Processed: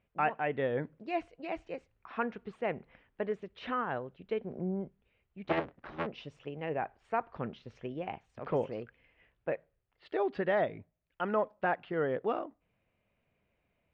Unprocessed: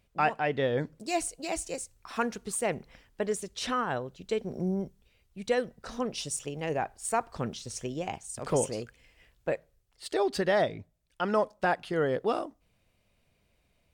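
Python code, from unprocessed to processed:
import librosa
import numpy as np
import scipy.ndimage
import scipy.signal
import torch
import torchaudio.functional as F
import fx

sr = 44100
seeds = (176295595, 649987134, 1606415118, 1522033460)

y = fx.cycle_switch(x, sr, every=3, mode='inverted', at=(5.44, 6.05), fade=0.02)
y = scipy.signal.sosfilt(scipy.signal.butter(4, 2700.0, 'lowpass', fs=sr, output='sos'), y)
y = fx.low_shelf(y, sr, hz=66.0, db=-11.5)
y = y * librosa.db_to_amplitude(-3.5)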